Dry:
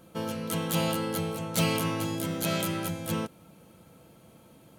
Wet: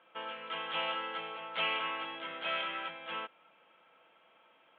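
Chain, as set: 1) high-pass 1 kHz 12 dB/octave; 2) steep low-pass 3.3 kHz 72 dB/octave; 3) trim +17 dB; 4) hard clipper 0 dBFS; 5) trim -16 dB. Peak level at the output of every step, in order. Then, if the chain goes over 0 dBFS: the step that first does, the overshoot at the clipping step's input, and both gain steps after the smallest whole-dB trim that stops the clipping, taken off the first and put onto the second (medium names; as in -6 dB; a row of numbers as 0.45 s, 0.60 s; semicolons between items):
-14.0 dBFS, -22.5 dBFS, -5.5 dBFS, -5.5 dBFS, -21.5 dBFS; nothing clips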